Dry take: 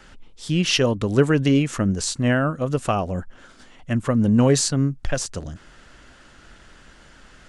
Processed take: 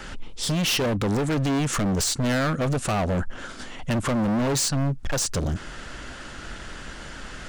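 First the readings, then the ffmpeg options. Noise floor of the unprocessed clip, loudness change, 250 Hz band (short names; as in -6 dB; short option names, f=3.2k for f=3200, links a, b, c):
-50 dBFS, -3.5 dB, -4.0 dB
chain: -filter_complex "[0:a]asplit=2[a][b];[b]acompressor=threshold=-27dB:ratio=6,volume=-2dB[c];[a][c]amix=inputs=2:normalize=0,alimiter=limit=-11.5dB:level=0:latency=1:release=296,asoftclip=type=hard:threshold=-27dB,volume=5.5dB"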